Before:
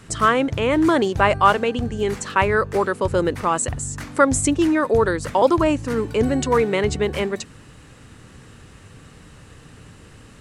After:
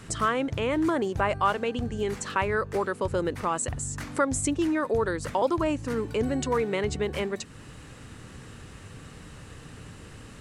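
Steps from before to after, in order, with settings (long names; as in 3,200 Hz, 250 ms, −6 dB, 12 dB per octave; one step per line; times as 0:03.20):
0:00.89–0:01.29: dynamic equaliser 3,900 Hz, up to −7 dB, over −39 dBFS, Q 1.2
downward compressor 1.5 to 1, threshold −37 dBFS, peak gain reduction 10 dB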